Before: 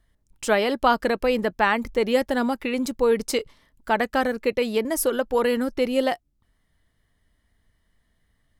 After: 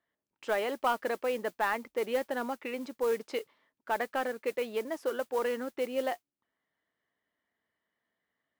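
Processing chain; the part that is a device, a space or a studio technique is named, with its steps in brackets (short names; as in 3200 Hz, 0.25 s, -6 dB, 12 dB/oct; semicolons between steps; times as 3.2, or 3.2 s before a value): carbon microphone (BPF 350–2700 Hz; soft clip -10.5 dBFS, distortion -21 dB; modulation noise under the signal 21 dB); gain -7.5 dB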